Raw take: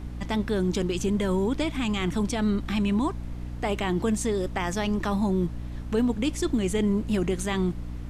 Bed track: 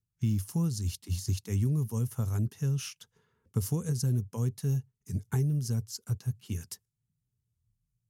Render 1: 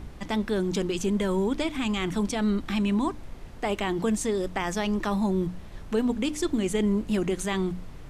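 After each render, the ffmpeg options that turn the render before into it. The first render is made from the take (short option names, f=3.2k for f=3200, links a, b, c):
-af "bandreject=f=60:t=h:w=6,bandreject=f=120:t=h:w=6,bandreject=f=180:t=h:w=6,bandreject=f=240:t=h:w=6,bandreject=f=300:t=h:w=6"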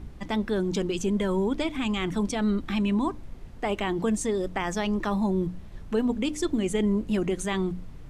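-af "afftdn=nr=6:nf=-42"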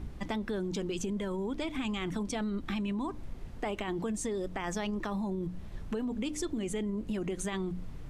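-af "alimiter=limit=-21dB:level=0:latency=1:release=14,acompressor=threshold=-31dB:ratio=6"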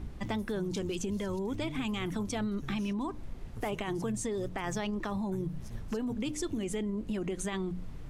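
-filter_complex "[1:a]volume=-16dB[a];[0:a][a]amix=inputs=2:normalize=0"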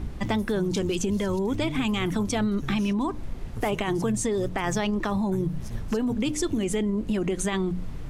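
-af "volume=8dB"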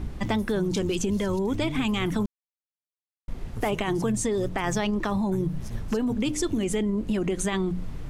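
-filter_complex "[0:a]asplit=3[a][b][c];[a]atrim=end=2.26,asetpts=PTS-STARTPTS,afade=t=out:st=2.256:d=0.004:c=hsin[d];[b]atrim=start=2.26:end=3.28,asetpts=PTS-STARTPTS,volume=0[e];[c]atrim=start=3.28,asetpts=PTS-STARTPTS,afade=t=in:d=0.004:c=hsin[f];[d][e][f]concat=n=3:v=0:a=1"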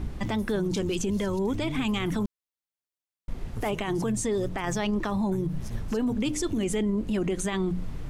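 -af "alimiter=limit=-20dB:level=0:latency=1:release=50"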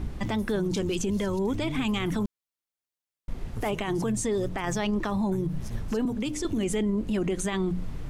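-filter_complex "[0:a]asettb=1/sr,asplit=3[a][b][c];[a]atrim=end=6.054[d];[b]atrim=start=6.05:end=6.45,asetpts=PTS-STARTPTS,afade=t=in:d=0.004:c=qsin,afade=t=out:st=0.396:d=0.004:c=qsin,acrossover=split=220|5300[e][f][g];[e]acompressor=threshold=-34dB:ratio=4[h];[f]acompressor=threshold=-29dB:ratio=4[i];[g]acompressor=threshold=-39dB:ratio=4[j];[h][i][j]amix=inputs=3:normalize=0[k];[c]atrim=start=6.446[l];[d][k]acrossfade=d=0.004:c1=hsin:c2=qsin[m];[m][l]acrossfade=d=0.004:c1=qsin:c2=hsin"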